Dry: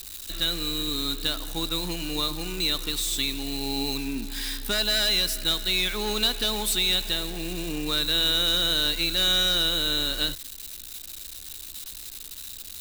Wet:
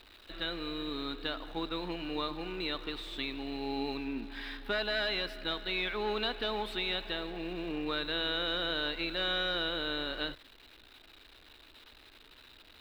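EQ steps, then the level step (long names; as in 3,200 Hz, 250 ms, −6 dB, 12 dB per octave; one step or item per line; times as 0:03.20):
high-frequency loss of the air 420 metres
bass and treble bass −12 dB, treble −3 dB
0.0 dB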